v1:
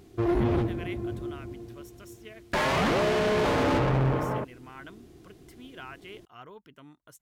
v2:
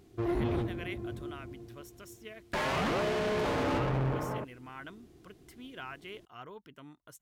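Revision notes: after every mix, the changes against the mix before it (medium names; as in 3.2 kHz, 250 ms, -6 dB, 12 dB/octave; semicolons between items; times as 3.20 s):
background -6.0 dB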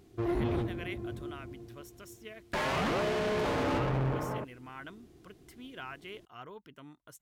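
no change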